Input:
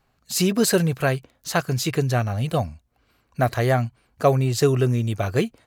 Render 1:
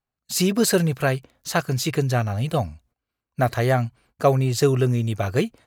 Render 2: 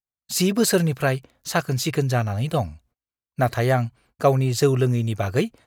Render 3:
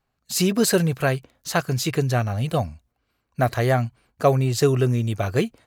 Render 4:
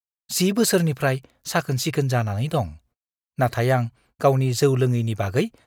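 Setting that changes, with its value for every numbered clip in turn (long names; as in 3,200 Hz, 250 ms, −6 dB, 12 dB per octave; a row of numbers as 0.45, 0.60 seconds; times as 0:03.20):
noise gate, range: −21, −36, −9, −52 decibels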